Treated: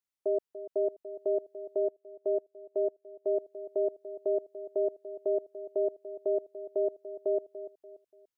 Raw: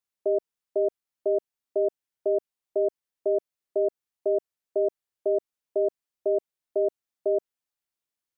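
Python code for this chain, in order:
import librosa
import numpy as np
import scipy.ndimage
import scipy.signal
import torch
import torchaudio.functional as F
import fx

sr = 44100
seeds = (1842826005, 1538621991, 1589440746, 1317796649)

y = fx.echo_feedback(x, sr, ms=290, feedback_pct=36, wet_db=-13.0)
y = fx.upward_expand(y, sr, threshold_db=-46.0, expansion=1.5, at=(1.8, 3.27))
y = y * 10.0 ** (-4.5 / 20.0)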